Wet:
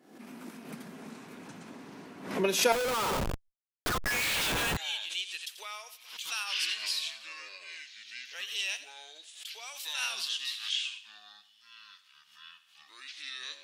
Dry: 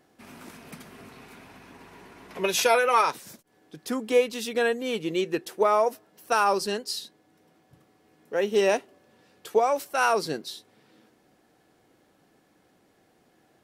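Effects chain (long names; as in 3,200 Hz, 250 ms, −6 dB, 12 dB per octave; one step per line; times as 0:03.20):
delay with pitch and tempo change per echo 404 ms, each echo −7 semitones, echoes 2
feedback echo with a high-pass in the loop 86 ms, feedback 44%, high-pass 610 Hz, level −14.5 dB
high-pass filter sweep 220 Hz → 3,100 Hz, 0:02.70–0:04.49
0:02.72–0:04.77: comparator with hysteresis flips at −34.5 dBFS
background raised ahead of every attack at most 91 dB per second
level −4.5 dB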